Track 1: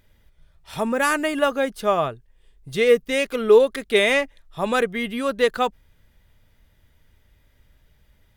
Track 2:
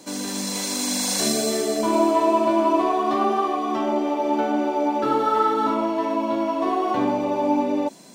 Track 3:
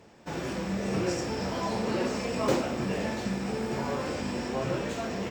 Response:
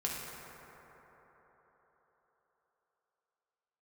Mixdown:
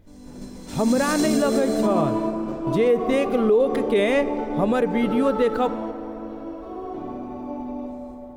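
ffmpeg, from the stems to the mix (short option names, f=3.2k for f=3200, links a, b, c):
-filter_complex "[0:a]volume=-0.5dB,asplit=3[a][b][c];[b]volume=-17.5dB[d];[1:a]adynamicequalizer=threshold=0.02:dfrequency=1500:dqfactor=0.7:tfrequency=1500:tqfactor=0.7:attack=5:release=100:ratio=0.375:range=1.5:mode=boostabove:tftype=highshelf,volume=-5.5dB,afade=t=in:st=0.73:d=0.33:silence=0.354813,afade=t=out:st=1.91:d=0.23:silence=0.446684,asplit=2[e][f];[f]volume=-6dB[g];[2:a]volume=-15.5dB[h];[c]apad=whole_len=359253[i];[e][i]sidechaingate=range=-33dB:threshold=-48dB:ratio=16:detection=peak[j];[3:a]atrim=start_sample=2205[k];[d][g]amix=inputs=2:normalize=0[l];[l][k]afir=irnorm=-1:irlink=0[m];[a][j][h][m]amix=inputs=4:normalize=0,tiltshelf=f=790:g=7.5,alimiter=limit=-11dB:level=0:latency=1:release=76"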